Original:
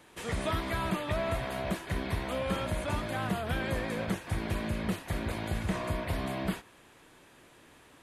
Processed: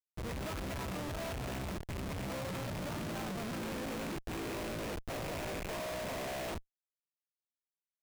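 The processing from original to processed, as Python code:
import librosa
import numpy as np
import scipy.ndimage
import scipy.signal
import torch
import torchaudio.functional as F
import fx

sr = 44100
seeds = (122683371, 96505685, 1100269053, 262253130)

y = fx.rattle_buzz(x, sr, strikes_db=-38.0, level_db=-26.0)
y = fx.filter_sweep_highpass(y, sr, from_hz=68.0, to_hz=550.0, start_s=1.75, end_s=5.15, q=2.1)
y = fx.schmitt(y, sr, flips_db=-34.5)
y = y * 10.0 ** (-6.0 / 20.0)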